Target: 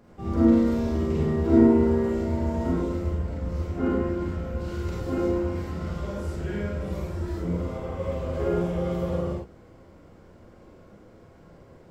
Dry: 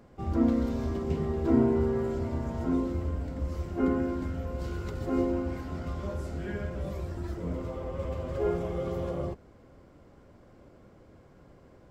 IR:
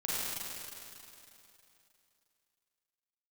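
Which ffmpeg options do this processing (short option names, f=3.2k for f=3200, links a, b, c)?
-filter_complex "[0:a]asettb=1/sr,asplit=3[a][b][c];[a]atrim=end=3.114[d];[b]atrim=start=3.11:end=4.69,asetpts=PTS-STARTPTS,afade=t=in:d=0.004:c=qsin,afade=t=out:st=1.576:d=0.004:c=qsin,highshelf=f=5.1k:g=-6[e];[c]atrim=start=4.686[f];[d][e]acrossfade=d=0.004:c1=hsin:c2=qsin[g];[g][f]acrossfade=d=0.004:c1=qsin:c2=hsin[h];[1:a]atrim=start_sample=2205,afade=t=out:st=0.16:d=0.01,atrim=end_sample=7497[i];[h][i]afir=irnorm=-1:irlink=0,volume=2dB"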